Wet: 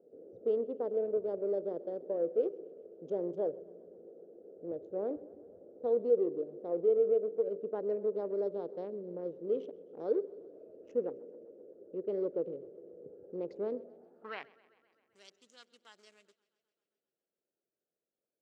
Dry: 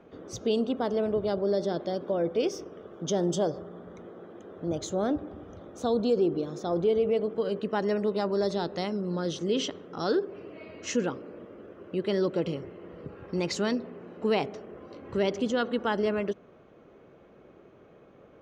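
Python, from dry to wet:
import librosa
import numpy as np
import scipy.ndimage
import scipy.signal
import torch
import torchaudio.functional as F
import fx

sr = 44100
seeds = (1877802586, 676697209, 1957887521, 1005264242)

y = fx.wiener(x, sr, points=41)
y = fx.filter_sweep_bandpass(y, sr, from_hz=480.0, to_hz=7600.0, start_s=13.77, end_s=15.14, q=3.6)
y = fx.echo_warbled(y, sr, ms=130, feedback_pct=69, rate_hz=2.8, cents=64, wet_db=-23.0)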